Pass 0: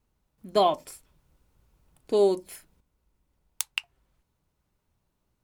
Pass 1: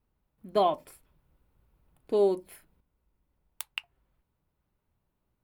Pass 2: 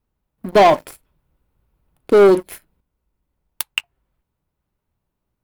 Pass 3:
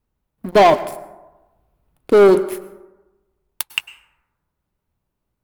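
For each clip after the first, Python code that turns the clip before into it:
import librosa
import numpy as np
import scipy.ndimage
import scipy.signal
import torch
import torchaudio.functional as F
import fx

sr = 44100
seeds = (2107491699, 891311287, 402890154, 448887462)

y1 = fx.peak_eq(x, sr, hz=6500.0, db=-12.5, octaves=1.3)
y1 = y1 * librosa.db_to_amplitude(-2.5)
y2 = fx.leveller(y1, sr, passes=3)
y2 = y2 * librosa.db_to_amplitude(7.5)
y3 = fx.rev_plate(y2, sr, seeds[0], rt60_s=1.1, hf_ratio=0.4, predelay_ms=90, drr_db=15.5)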